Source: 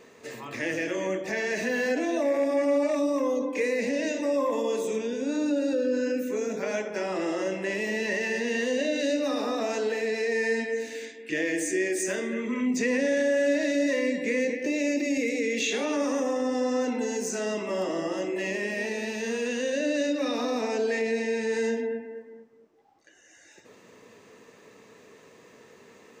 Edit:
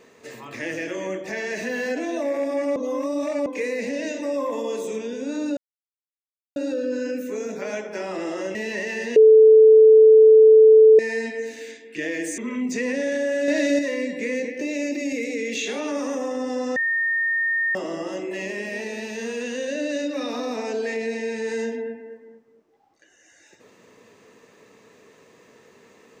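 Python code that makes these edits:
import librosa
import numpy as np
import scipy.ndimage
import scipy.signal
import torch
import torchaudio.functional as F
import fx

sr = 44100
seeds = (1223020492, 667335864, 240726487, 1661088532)

y = fx.edit(x, sr, fx.reverse_span(start_s=2.76, length_s=0.7),
    fx.insert_silence(at_s=5.57, length_s=0.99),
    fx.cut(start_s=7.56, length_s=0.33),
    fx.bleep(start_s=8.5, length_s=1.83, hz=438.0, db=-7.5),
    fx.cut(start_s=11.72, length_s=0.71),
    fx.clip_gain(start_s=13.53, length_s=0.31, db=5.0),
    fx.bleep(start_s=16.81, length_s=0.99, hz=1830.0, db=-19.5), tone=tone)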